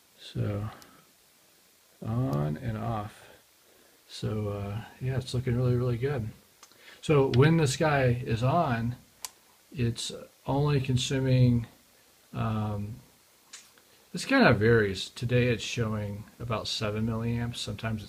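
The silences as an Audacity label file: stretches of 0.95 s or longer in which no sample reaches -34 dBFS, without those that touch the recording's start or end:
0.820000	2.020000	silence
3.070000	4.140000	silence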